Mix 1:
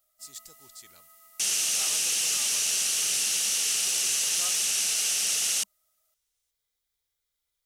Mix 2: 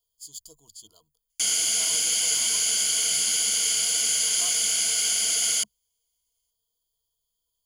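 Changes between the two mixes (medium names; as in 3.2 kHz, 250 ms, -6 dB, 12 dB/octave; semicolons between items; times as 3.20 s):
speech: add elliptic band-stop 1.2–3.1 kHz; first sound: muted; master: add rippled EQ curve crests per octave 1.8, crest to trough 16 dB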